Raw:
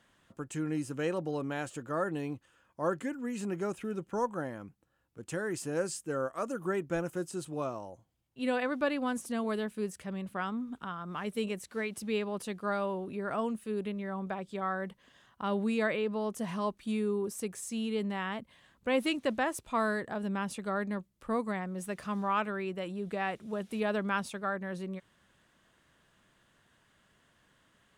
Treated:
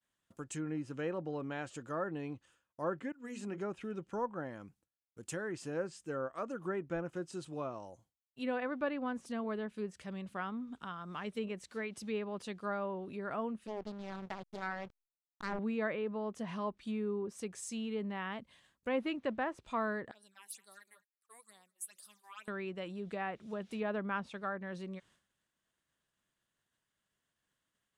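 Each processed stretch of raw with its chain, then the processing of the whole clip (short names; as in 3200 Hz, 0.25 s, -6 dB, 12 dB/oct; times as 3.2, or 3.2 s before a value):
3.12–3.58 expander -35 dBFS + notches 60/120/180/240/300/360/420/480/540 Hz
13.67–15.59 backlash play -35 dBFS + Doppler distortion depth 0.92 ms
20.11–22.48 phaser stages 8, 2.2 Hz, lowest notch 160–2400 Hz + differentiator + echo 0.21 s -17.5 dB
whole clip: treble ducked by the level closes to 1900 Hz, closed at -29 dBFS; expander -57 dBFS; high shelf 4100 Hz +10 dB; gain -5 dB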